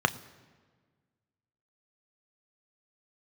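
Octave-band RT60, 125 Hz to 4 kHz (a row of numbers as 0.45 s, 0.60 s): 1.8 s, 1.9 s, 1.6 s, 1.4 s, 1.3 s, 1.1 s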